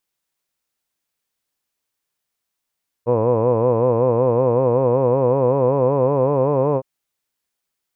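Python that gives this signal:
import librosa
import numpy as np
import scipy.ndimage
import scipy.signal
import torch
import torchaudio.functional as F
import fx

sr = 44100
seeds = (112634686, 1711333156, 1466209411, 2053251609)

y = fx.formant_vowel(sr, seeds[0], length_s=3.76, hz=115.0, glide_st=3.5, vibrato_hz=5.3, vibrato_st=1.2, f1_hz=500.0, f2_hz=1000.0, f3_hz=2500.0)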